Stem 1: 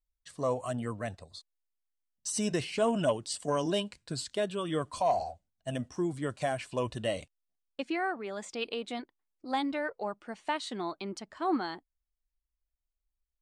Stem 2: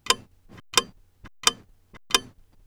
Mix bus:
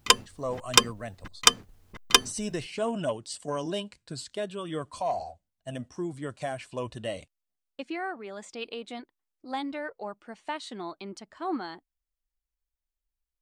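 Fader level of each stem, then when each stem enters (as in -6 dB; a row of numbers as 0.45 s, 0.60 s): -2.0 dB, +2.0 dB; 0.00 s, 0.00 s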